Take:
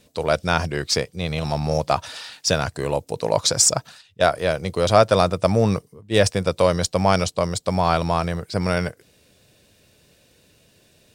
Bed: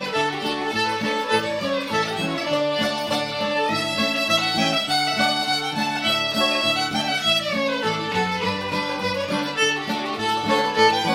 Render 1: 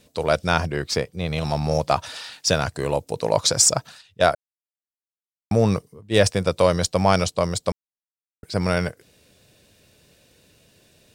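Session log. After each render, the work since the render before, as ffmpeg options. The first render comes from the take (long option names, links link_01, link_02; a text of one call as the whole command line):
ffmpeg -i in.wav -filter_complex "[0:a]asettb=1/sr,asplit=3[link_01][link_02][link_03];[link_01]atrim=end=0.604[link_04];[link_02]atrim=start=0.6:end=1.33,asetpts=PTS-STARTPTS,afade=type=in:duration=0.004:curve=qsin,afade=type=out:start_time=0.726:duration=0.004:curve=qsin,equalizer=frequency=6700:width=0.43:gain=-5.5[link_05];[link_03]atrim=start=1.326[link_06];[link_04][link_05]acrossfade=duration=0.004:curve1=hsin:curve2=qsin[link_07];[link_07][link_06]acrossfade=duration=0.004:curve1=qsin:curve2=hsin,asplit=5[link_08][link_09][link_10][link_11][link_12];[link_08]atrim=end=4.35,asetpts=PTS-STARTPTS,afade=type=out:start_time=4.346:duration=0.004:curve=hsin[link_13];[link_09]atrim=start=4.35:end=5.51,asetpts=PTS-STARTPTS,volume=0[link_14];[link_10]atrim=start=5.51:end=7.72,asetpts=PTS-STARTPTS,afade=type=in:duration=0.004:curve=hsin,afade=type=out:start_time=2.206:duration=0.004:curve=hsin[link_15];[link_11]atrim=start=7.72:end=8.43,asetpts=PTS-STARTPTS,volume=0[link_16];[link_12]atrim=start=8.43,asetpts=PTS-STARTPTS,afade=type=in:duration=0.004:curve=hsin[link_17];[link_13][link_14][link_15][link_16][link_17]concat=n=5:v=0:a=1" out.wav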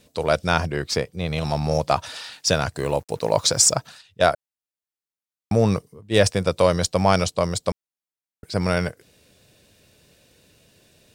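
ffmpeg -i in.wav -filter_complex "[0:a]asettb=1/sr,asplit=3[link_01][link_02][link_03];[link_01]atrim=end=2.764[link_04];[link_02]atrim=start=2.76:end=3.75,asetpts=PTS-STARTPTS,afade=type=in:duration=0.004:curve=qsin,afade=type=out:start_time=0.986:duration=0.004:curve=qsin,acrusher=bits=7:mix=0:aa=0.5[link_05];[link_03]atrim=start=3.746[link_06];[link_04][link_05]acrossfade=duration=0.004:curve1=hsin:curve2=qsin[link_07];[link_07][link_06]acrossfade=duration=0.004:curve1=qsin:curve2=hsin" out.wav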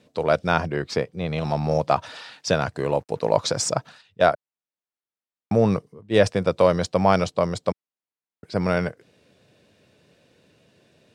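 ffmpeg -i in.wav -af "highpass=120,aemphasis=mode=reproduction:type=75fm" out.wav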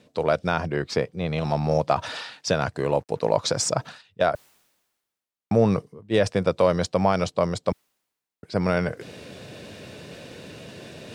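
ffmpeg -i in.wav -af "alimiter=limit=-8.5dB:level=0:latency=1:release=119,areverse,acompressor=mode=upward:threshold=-25dB:ratio=2.5,areverse" out.wav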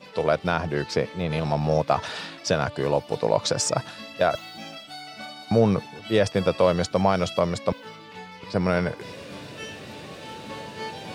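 ffmpeg -i in.wav -i bed.wav -filter_complex "[1:a]volume=-18.5dB[link_01];[0:a][link_01]amix=inputs=2:normalize=0" out.wav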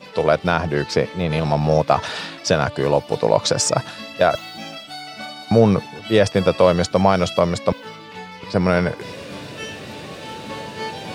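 ffmpeg -i in.wav -af "volume=5.5dB" out.wav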